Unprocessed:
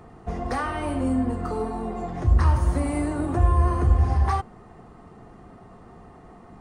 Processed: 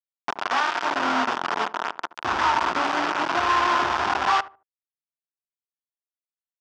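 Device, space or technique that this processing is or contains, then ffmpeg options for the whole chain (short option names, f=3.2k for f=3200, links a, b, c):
hand-held game console: -filter_complex "[0:a]lowpass=5.9k,acrusher=bits=3:mix=0:aa=0.000001,highpass=450,equalizer=f=500:t=q:w=4:g=-9,equalizer=f=950:t=q:w=4:g=6,equalizer=f=1.4k:t=q:w=4:g=6,equalizer=f=2.1k:t=q:w=4:g=-3,equalizer=f=4.1k:t=q:w=4:g=-6,lowpass=f=5.1k:w=0.5412,lowpass=f=5.1k:w=1.3066,asplit=2[a][b];[b]adelay=74,lowpass=f=1k:p=1,volume=-15.5dB,asplit=2[c][d];[d]adelay=74,lowpass=f=1k:p=1,volume=0.29,asplit=2[e][f];[f]adelay=74,lowpass=f=1k:p=1,volume=0.29[g];[a][c][e][g]amix=inputs=4:normalize=0,volume=3dB"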